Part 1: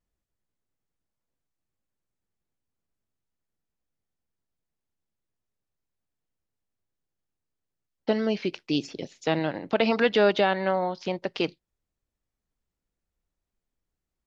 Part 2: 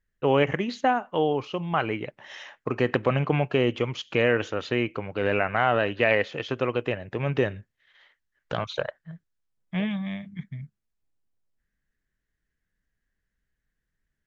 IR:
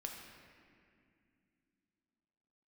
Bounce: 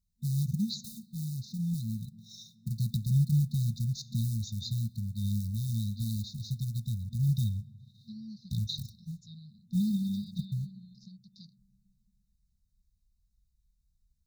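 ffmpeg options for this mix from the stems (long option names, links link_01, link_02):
-filter_complex "[0:a]volume=-14.5dB[link_01];[1:a]acrusher=bits=7:mode=log:mix=0:aa=0.000001,asubboost=boost=4:cutoff=85,volume=2dB,asplit=2[link_02][link_03];[link_03]volume=-14.5dB[link_04];[2:a]atrim=start_sample=2205[link_05];[link_04][link_05]afir=irnorm=-1:irlink=0[link_06];[link_01][link_02][link_06]amix=inputs=3:normalize=0,highpass=frequency=41:poles=1,afftfilt=real='re*(1-between(b*sr/4096,230,3600))':imag='im*(1-between(b*sr/4096,230,3600))':win_size=4096:overlap=0.75"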